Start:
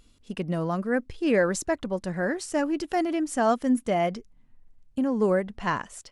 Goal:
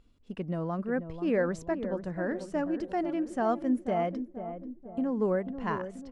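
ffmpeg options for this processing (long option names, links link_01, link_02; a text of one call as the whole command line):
ffmpeg -i in.wav -filter_complex "[0:a]lowpass=frequency=1500:poles=1,asplit=2[link_01][link_02];[link_02]adelay=487,lowpass=frequency=830:poles=1,volume=-8.5dB,asplit=2[link_03][link_04];[link_04]adelay=487,lowpass=frequency=830:poles=1,volume=0.54,asplit=2[link_05][link_06];[link_06]adelay=487,lowpass=frequency=830:poles=1,volume=0.54,asplit=2[link_07][link_08];[link_08]adelay=487,lowpass=frequency=830:poles=1,volume=0.54,asplit=2[link_09][link_10];[link_10]adelay=487,lowpass=frequency=830:poles=1,volume=0.54,asplit=2[link_11][link_12];[link_12]adelay=487,lowpass=frequency=830:poles=1,volume=0.54[link_13];[link_03][link_05][link_07][link_09][link_11][link_13]amix=inputs=6:normalize=0[link_14];[link_01][link_14]amix=inputs=2:normalize=0,volume=-4.5dB" out.wav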